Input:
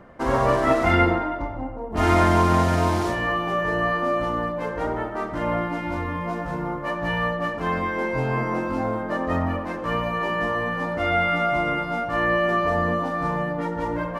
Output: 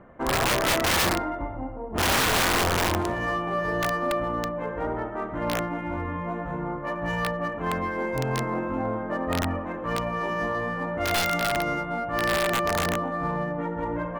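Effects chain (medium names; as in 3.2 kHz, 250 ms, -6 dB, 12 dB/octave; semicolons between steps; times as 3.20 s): local Wiener filter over 9 samples; integer overflow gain 14.5 dB; trim -2.5 dB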